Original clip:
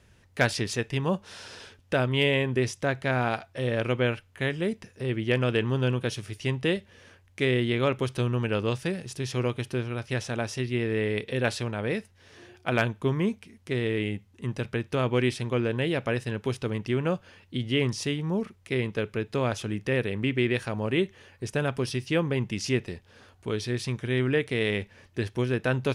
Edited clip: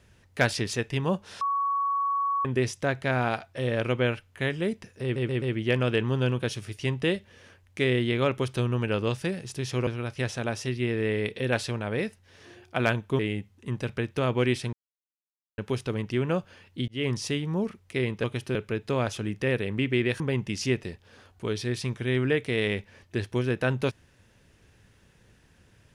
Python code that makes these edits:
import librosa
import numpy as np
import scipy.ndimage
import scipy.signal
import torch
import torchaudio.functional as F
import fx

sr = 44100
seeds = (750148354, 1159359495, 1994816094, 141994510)

y = fx.edit(x, sr, fx.bleep(start_s=1.41, length_s=1.04, hz=1120.0, db=-23.5),
    fx.stutter(start_s=5.03, slice_s=0.13, count=4),
    fx.move(start_s=9.48, length_s=0.31, to_s=19.0),
    fx.cut(start_s=13.11, length_s=0.84),
    fx.silence(start_s=15.49, length_s=0.85),
    fx.fade_in_span(start_s=17.64, length_s=0.33, curve='qsin'),
    fx.cut(start_s=20.65, length_s=1.58), tone=tone)